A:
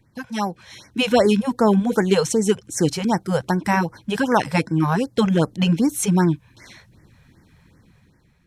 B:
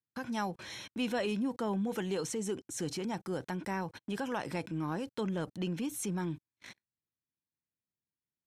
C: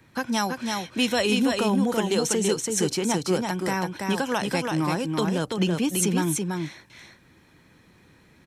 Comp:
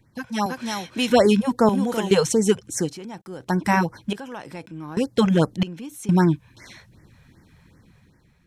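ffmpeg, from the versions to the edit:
ffmpeg -i take0.wav -i take1.wav -i take2.wav -filter_complex "[2:a]asplit=2[link_01][link_02];[1:a]asplit=3[link_03][link_04][link_05];[0:a]asplit=6[link_06][link_07][link_08][link_09][link_10][link_11];[link_06]atrim=end=0.462[link_12];[link_01]atrim=start=0.458:end=1.102[link_13];[link_07]atrim=start=1.098:end=1.692[link_14];[link_02]atrim=start=1.688:end=2.112[link_15];[link_08]atrim=start=2.108:end=2.91[link_16];[link_03]atrim=start=2.75:end=3.56[link_17];[link_09]atrim=start=3.4:end=4.132[link_18];[link_04]atrim=start=4.128:end=4.972[link_19];[link_10]atrim=start=4.968:end=5.632[link_20];[link_05]atrim=start=5.628:end=6.092[link_21];[link_11]atrim=start=6.088[link_22];[link_12][link_13]acrossfade=duration=0.004:curve1=hsin:curve2=hsin[link_23];[link_23][link_14]acrossfade=duration=0.004:curve1=hsin:curve2=hsin[link_24];[link_24][link_15]acrossfade=duration=0.004:curve1=hsin:curve2=hsin[link_25];[link_25][link_16]acrossfade=duration=0.004:curve1=hsin:curve2=hsin[link_26];[link_26][link_17]acrossfade=duration=0.16:curve1=tri:curve2=tri[link_27];[link_27][link_18]acrossfade=duration=0.16:curve1=tri:curve2=tri[link_28];[link_28][link_19]acrossfade=duration=0.004:curve1=hsin:curve2=hsin[link_29];[link_29][link_20]acrossfade=duration=0.004:curve1=hsin:curve2=hsin[link_30];[link_30][link_21]acrossfade=duration=0.004:curve1=hsin:curve2=hsin[link_31];[link_31][link_22]acrossfade=duration=0.004:curve1=hsin:curve2=hsin" out.wav

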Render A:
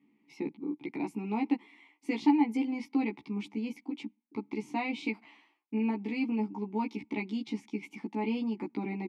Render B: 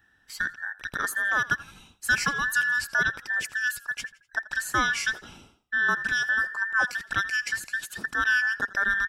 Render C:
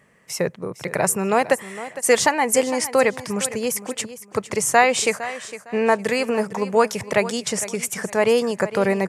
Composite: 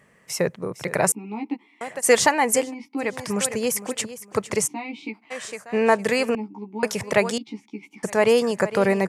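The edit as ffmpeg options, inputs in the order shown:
ffmpeg -i take0.wav -i take1.wav -i take2.wav -filter_complex "[0:a]asplit=5[link_01][link_02][link_03][link_04][link_05];[2:a]asplit=6[link_06][link_07][link_08][link_09][link_10][link_11];[link_06]atrim=end=1.122[link_12];[link_01]atrim=start=1.118:end=1.812[link_13];[link_07]atrim=start=1.808:end=2.75[link_14];[link_02]atrim=start=2.51:end=3.2[link_15];[link_08]atrim=start=2.96:end=4.68[link_16];[link_03]atrim=start=4.66:end=5.32[link_17];[link_09]atrim=start=5.3:end=6.352[link_18];[link_04]atrim=start=6.348:end=6.832[link_19];[link_10]atrim=start=6.828:end=7.382[link_20];[link_05]atrim=start=7.378:end=8.032[link_21];[link_11]atrim=start=8.028[link_22];[link_12][link_13]acrossfade=duration=0.004:curve1=hsin:curve2=hsin[link_23];[link_23][link_14]acrossfade=duration=0.004:curve1=hsin:curve2=hsin[link_24];[link_24][link_15]acrossfade=duration=0.24:curve1=tri:curve2=tri[link_25];[link_25][link_16]acrossfade=duration=0.24:curve1=tri:curve2=tri[link_26];[link_26][link_17]acrossfade=duration=0.02:curve1=tri:curve2=tri[link_27];[link_27][link_18]acrossfade=duration=0.02:curve1=tri:curve2=tri[link_28];[link_28][link_19]acrossfade=duration=0.004:curve1=hsin:curve2=hsin[link_29];[link_29][link_20]acrossfade=duration=0.004:curve1=hsin:curve2=hsin[link_30];[link_30][link_21]acrossfade=duration=0.004:curve1=hsin:curve2=hsin[link_31];[link_31][link_22]acrossfade=duration=0.004:curve1=hsin:curve2=hsin" out.wav

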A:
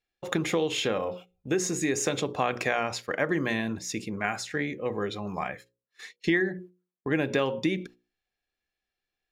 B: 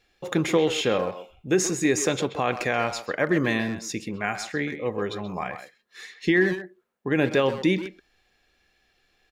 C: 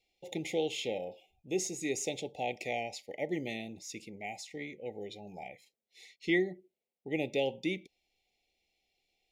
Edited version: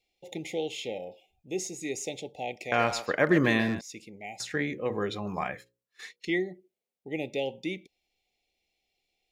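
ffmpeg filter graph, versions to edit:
ffmpeg -i take0.wav -i take1.wav -i take2.wav -filter_complex "[2:a]asplit=3[link_01][link_02][link_03];[link_01]atrim=end=2.722[link_04];[1:a]atrim=start=2.718:end=3.812[link_05];[link_02]atrim=start=3.808:end=4.402[link_06];[0:a]atrim=start=4.398:end=6.252[link_07];[link_03]atrim=start=6.248[link_08];[link_04][link_05]acrossfade=duration=0.004:curve1=hsin:curve2=hsin[link_09];[link_09][link_06]acrossfade=duration=0.004:curve1=hsin:curve2=hsin[link_10];[link_10][link_07]acrossfade=duration=0.004:curve1=hsin:curve2=hsin[link_11];[link_11][link_08]acrossfade=duration=0.004:curve1=hsin:curve2=hsin" out.wav

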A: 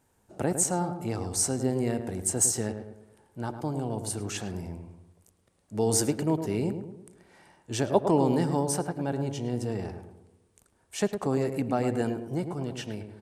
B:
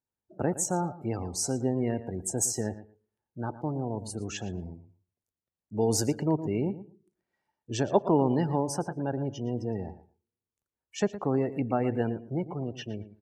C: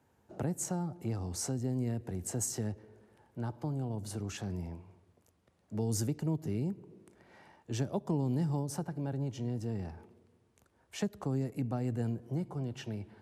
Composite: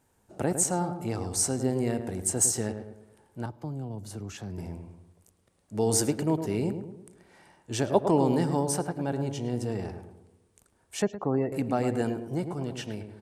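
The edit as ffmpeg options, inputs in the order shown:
ffmpeg -i take0.wav -i take1.wav -i take2.wav -filter_complex "[0:a]asplit=3[link_01][link_02][link_03];[link_01]atrim=end=3.462[link_04];[2:a]atrim=start=3.458:end=4.582[link_05];[link_02]atrim=start=4.578:end=11.022[link_06];[1:a]atrim=start=11.018:end=11.522[link_07];[link_03]atrim=start=11.518[link_08];[link_04][link_05]acrossfade=duration=0.004:curve1=hsin:curve2=hsin[link_09];[link_09][link_06]acrossfade=duration=0.004:curve1=hsin:curve2=hsin[link_10];[link_10][link_07]acrossfade=duration=0.004:curve1=hsin:curve2=hsin[link_11];[link_11][link_08]acrossfade=duration=0.004:curve1=hsin:curve2=hsin" out.wav

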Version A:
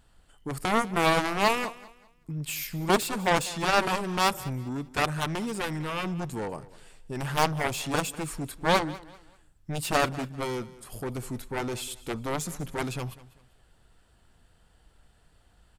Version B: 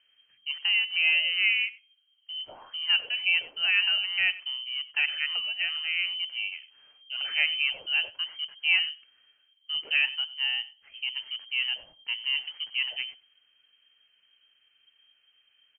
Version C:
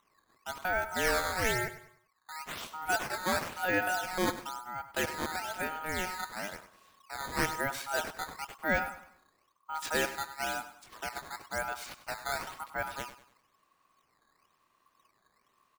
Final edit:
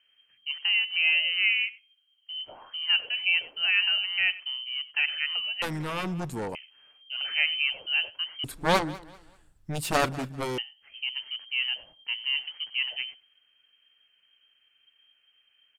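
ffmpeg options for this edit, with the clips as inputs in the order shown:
ffmpeg -i take0.wav -i take1.wav -filter_complex "[0:a]asplit=2[link_01][link_02];[1:a]asplit=3[link_03][link_04][link_05];[link_03]atrim=end=5.622[link_06];[link_01]atrim=start=5.618:end=6.552[link_07];[link_04]atrim=start=6.548:end=8.442[link_08];[link_02]atrim=start=8.438:end=10.582[link_09];[link_05]atrim=start=10.578[link_10];[link_06][link_07]acrossfade=duration=0.004:curve1=hsin:curve2=hsin[link_11];[link_11][link_08]acrossfade=duration=0.004:curve1=hsin:curve2=hsin[link_12];[link_12][link_09]acrossfade=duration=0.004:curve1=hsin:curve2=hsin[link_13];[link_13][link_10]acrossfade=duration=0.004:curve1=hsin:curve2=hsin" out.wav

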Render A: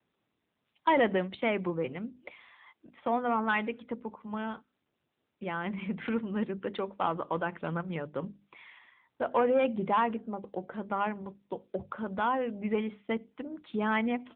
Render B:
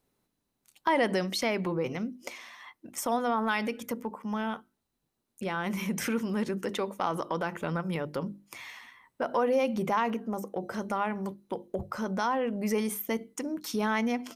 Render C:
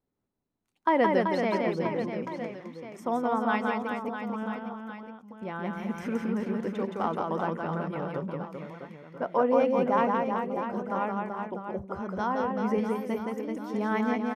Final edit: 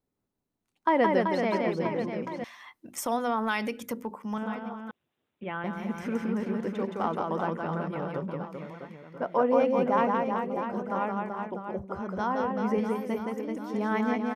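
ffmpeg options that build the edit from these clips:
ffmpeg -i take0.wav -i take1.wav -i take2.wav -filter_complex "[2:a]asplit=3[link_01][link_02][link_03];[link_01]atrim=end=2.442[link_04];[1:a]atrim=start=2.438:end=4.382[link_05];[link_02]atrim=start=4.378:end=4.912[link_06];[0:a]atrim=start=4.908:end=5.642[link_07];[link_03]atrim=start=5.638[link_08];[link_04][link_05]acrossfade=duration=0.004:curve1=hsin:curve2=hsin[link_09];[link_09][link_06]acrossfade=duration=0.004:curve1=hsin:curve2=hsin[link_10];[link_10][link_07]acrossfade=duration=0.004:curve1=hsin:curve2=hsin[link_11];[link_11][link_08]acrossfade=duration=0.004:curve1=hsin:curve2=hsin" out.wav

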